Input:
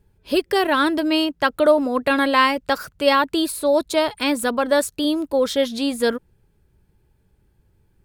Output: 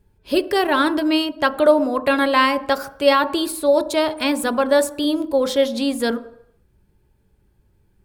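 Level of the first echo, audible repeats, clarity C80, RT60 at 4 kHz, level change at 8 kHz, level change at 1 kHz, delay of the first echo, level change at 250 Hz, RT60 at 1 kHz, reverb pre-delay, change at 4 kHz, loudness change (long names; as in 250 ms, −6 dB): no echo audible, no echo audible, 18.0 dB, 0.70 s, 0.0 dB, +0.5 dB, no echo audible, +1.0 dB, 0.75 s, 3 ms, 0.0 dB, +1.0 dB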